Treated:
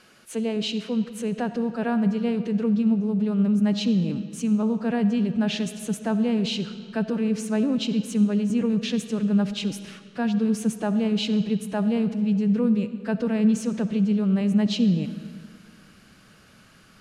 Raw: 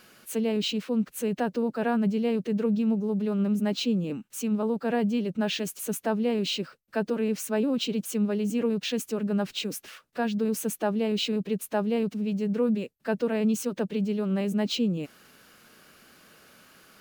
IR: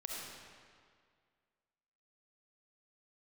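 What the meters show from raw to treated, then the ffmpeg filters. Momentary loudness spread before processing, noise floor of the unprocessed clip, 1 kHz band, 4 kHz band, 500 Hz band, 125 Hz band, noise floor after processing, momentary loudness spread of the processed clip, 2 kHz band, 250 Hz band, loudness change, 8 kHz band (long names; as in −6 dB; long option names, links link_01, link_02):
5 LU, −61 dBFS, −0.5 dB, +0.5 dB, −1.0 dB, +6.5 dB, −53 dBFS, 7 LU, +0.5 dB, +5.0 dB, +4.0 dB, −1.5 dB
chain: -filter_complex "[0:a]asubboost=boost=3.5:cutoff=210,lowpass=frequency=11000:width=0.5412,lowpass=frequency=11000:width=1.3066,asplit=2[link_01][link_02];[1:a]atrim=start_sample=2205,lowpass=8100[link_03];[link_02][link_03]afir=irnorm=-1:irlink=0,volume=-7.5dB[link_04];[link_01][link_04]amix=inputs=2:normalize=0,volume=-1.5dB"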